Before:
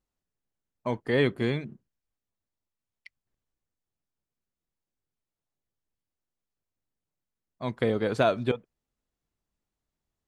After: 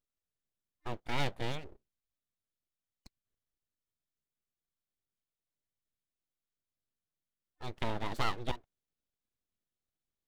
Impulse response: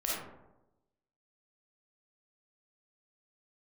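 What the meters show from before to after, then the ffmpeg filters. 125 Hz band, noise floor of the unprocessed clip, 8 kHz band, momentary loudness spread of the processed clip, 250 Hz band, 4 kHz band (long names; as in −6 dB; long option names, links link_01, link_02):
−8.5 dB, below −85 dBFS, can't be measured, 13 LU, −13.5 dB, −3.0 dB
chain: -af "superequalizer=9b=0.251:13b=1.58,aeval=exprs='abs(val(0))':channel_layout=same,volume=-6.5dB"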